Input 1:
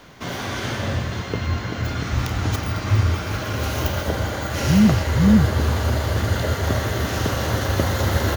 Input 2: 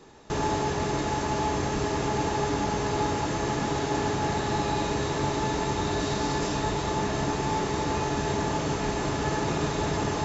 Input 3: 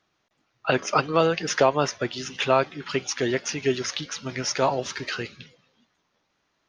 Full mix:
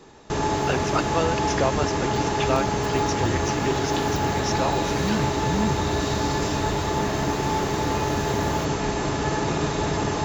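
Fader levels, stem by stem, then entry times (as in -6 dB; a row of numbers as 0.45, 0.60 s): -12.0, +3.0, -4.5 dB; 0.30, 0.00, 0.00 s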